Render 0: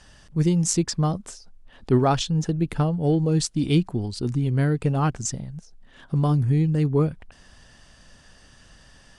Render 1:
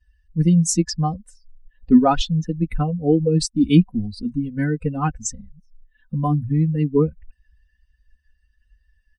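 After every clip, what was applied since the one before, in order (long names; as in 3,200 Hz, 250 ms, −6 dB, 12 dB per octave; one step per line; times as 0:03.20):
spectral dynamics exaggerated over time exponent 2
low-shelf EQ 310 Hz +8.5 dB
comb filter 4 ms, depth 99%
level +2 dB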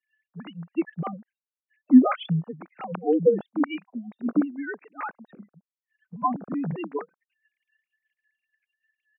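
three sine waves on the formant tracks
through-zero flanger with one copy inverted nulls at 0.92 Hz, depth 1.2 ms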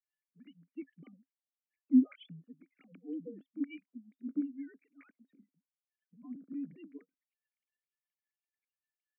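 formant filter i
level −7.5 dB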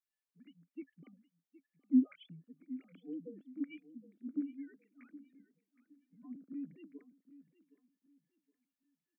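repeating echo 767 ms, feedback 27%, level −16.5 dB
level −3 dB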